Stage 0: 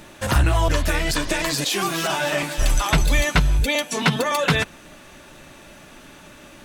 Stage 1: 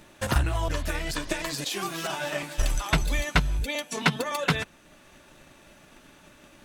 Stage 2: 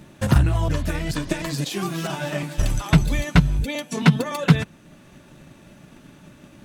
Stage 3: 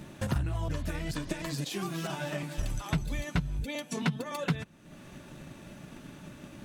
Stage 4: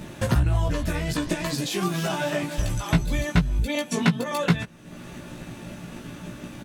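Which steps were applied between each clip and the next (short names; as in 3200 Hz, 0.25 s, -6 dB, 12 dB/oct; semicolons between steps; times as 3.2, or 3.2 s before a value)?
transient shaper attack +7 dB, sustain -2 dB; gain -9 dB
bell 150 Hz +13.5 dB 2.2 oct
compressor 2:1, threshold -38 dBFS, peak gain reduction 16 dB
doubler 17 ms -3.5 dB; gain +7 dB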